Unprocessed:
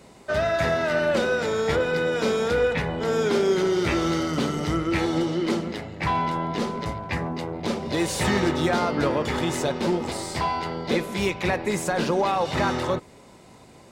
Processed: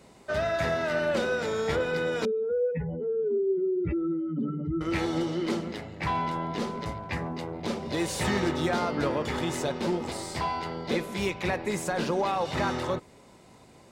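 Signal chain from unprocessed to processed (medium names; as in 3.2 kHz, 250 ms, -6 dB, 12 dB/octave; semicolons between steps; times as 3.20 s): 2.25–4.81 s: spectral contrast enhancement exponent 2.9; trim -4.5 dB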